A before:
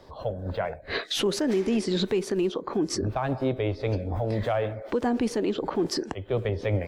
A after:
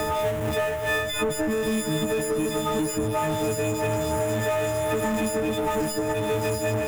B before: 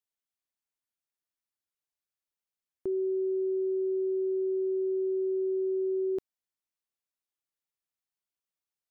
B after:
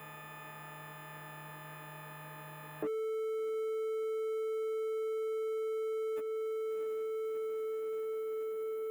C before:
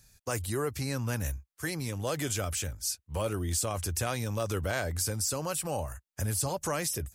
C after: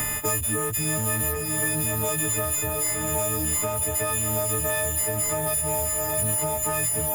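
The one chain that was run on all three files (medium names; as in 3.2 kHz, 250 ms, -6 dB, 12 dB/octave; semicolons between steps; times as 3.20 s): partials quantised in pitch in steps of 6 st; echo that smears into a reverb 677 ms, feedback 62%, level -10 dB; power-law waveshaper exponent 0.5; peaking EQ 4.6 kHz -15 dB 0.96 oct; three bands compressed up and down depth 100%; trim -8.5 dB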